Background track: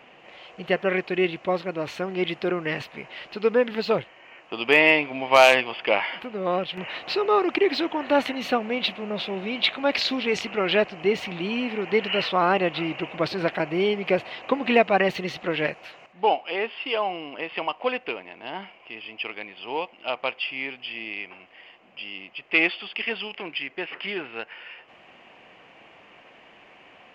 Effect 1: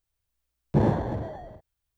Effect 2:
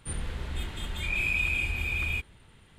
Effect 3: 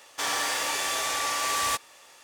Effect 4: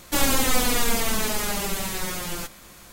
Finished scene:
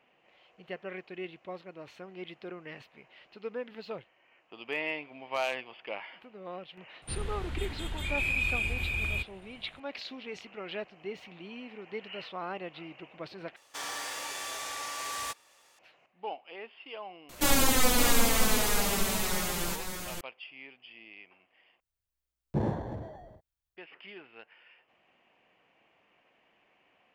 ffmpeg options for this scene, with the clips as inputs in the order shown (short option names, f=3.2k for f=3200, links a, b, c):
-filter_complex "[0:a]volume=-17dB[a];[4:a]aecho=1:1:564:0.473[b];[a]asplit=3[c][d][e];[c]atrim=end=13.564[f];[3:a]atrim=end=2.23,asetpts=PTS-STARTPTS,volume=-9.5dB[g];[d]atrim=start=15.786:end=21.804[h];[1:a]atrim=end=1.97,asetpts=PTS-STARTPTS,volume=-8dB[i];[e]atrim=start=23.766[j];[2:a]atrim=end=2.78,asetpts=PTS-STARTPTS,volume=-2dB,afade=t=in:d=0.004:c=hsin,afade=t=out:st=2.776:d=0.004:c=hsin,adelay=7020[k];[b]atrim=end=2.92,asetpts=PTS-STARTPTS,volume=-3dB,afade=t=in:d=0.004:c=hsin,afade=t=out:st=2.916:d=0.004:c=hsin,adelay=17290[l];[f][g]acrossfade=d=0.004:c1=hsin:c2=hsin[m];[m][h]acrossfade=d=0.004:c1=hsin:c2=hsin[n];[n][i]acrossfade=d=0.004:c1=hsin:c2=hsin[o];[o][j]acrossfade=d=0.004:c1=hsin:c2=hsin[p];[p][k][l]amix=inputs=3:normalize=0"